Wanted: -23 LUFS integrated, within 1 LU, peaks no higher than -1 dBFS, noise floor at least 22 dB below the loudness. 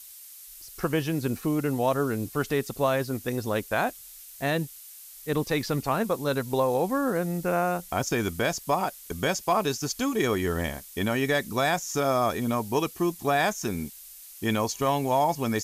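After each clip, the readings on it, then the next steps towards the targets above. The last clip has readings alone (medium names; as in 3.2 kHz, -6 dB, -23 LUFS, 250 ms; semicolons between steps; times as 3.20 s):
noise floor -46 dBFS; noise floor target -49 dBFS; loudness -27.0 LUFS; peak level -13.0 dBFS; loudness target -23.0 LUFS
-> noise print and reduce 6 dB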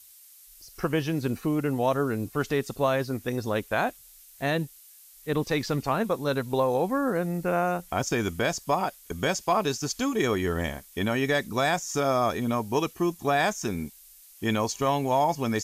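noise floor -52 dBFS; loudness -27.5 LUFS; peak level -13.0 dBFS; loudness target -23.0 LUFS
-> trim +4.5 dB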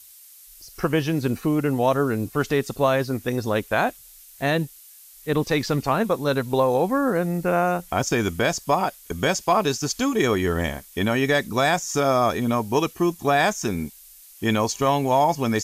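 loudness -23.0 LUFS; peak level -8.5 dBFS; noise floor -48 dBFS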